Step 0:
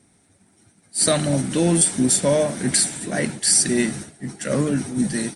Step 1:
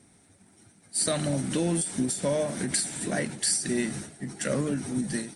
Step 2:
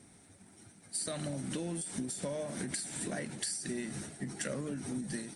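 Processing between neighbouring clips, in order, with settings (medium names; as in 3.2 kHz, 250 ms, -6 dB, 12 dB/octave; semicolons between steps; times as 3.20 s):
compression 2.5:1, threshold -27 dBFS, peak gain reduction 10 dB; endings held to a fixed fall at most 110 dB/s
compression 6:1, threshold -35 dBFS, peak gain reduction 12.5 dB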